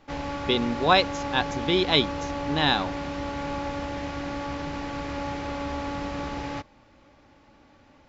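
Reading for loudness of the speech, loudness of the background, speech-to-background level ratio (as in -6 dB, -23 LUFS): -24.5 LUFS, -32.0 LUFS, 7.5 dB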